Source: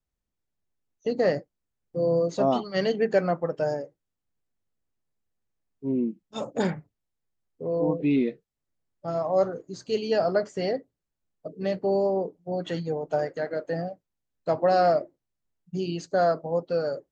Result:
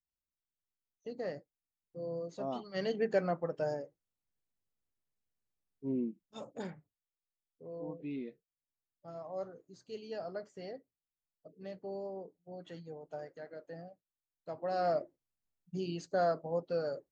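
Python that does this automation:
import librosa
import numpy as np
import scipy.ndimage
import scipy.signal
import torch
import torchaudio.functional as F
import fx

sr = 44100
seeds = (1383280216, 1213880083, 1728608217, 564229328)

y = fx.gain(x, sr, db=fx.line((2.43, -16.0), (2.97, -8.0), (5.96, -8.0), (6.74, -17.5), (14.55, -17.5), (14.99, -8.0)))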